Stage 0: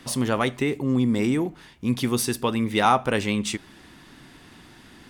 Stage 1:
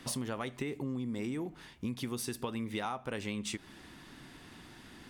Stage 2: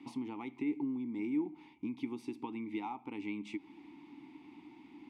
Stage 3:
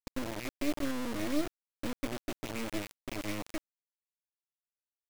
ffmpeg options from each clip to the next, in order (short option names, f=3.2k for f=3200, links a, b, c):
-af "acompressor=threshold=-29dB:ratio=12,volume=-4dB"
-filter_complex "[0:a]asplit=3[a][b][c];[a]bandpass=f=300:t=q:w=8,volume=0dB[d];[b]bandpass=f=870:t=q:w=8,volume=-6dB[e];[c]bandpass=f=2.24k:t=q:w=8,volume=-9dB[f];[d][e][f]amix=inputs=3:normalize=0,volume=8.5dB"
-af "asuperstop=centerf=940:order=12:qfactor=1.1,agate=range=-33dB:threshold=-47dB:ratio=3:detection=peak,acrusher=bits=4:dc=4:mix=0:aa=0.000001,volume=6dB"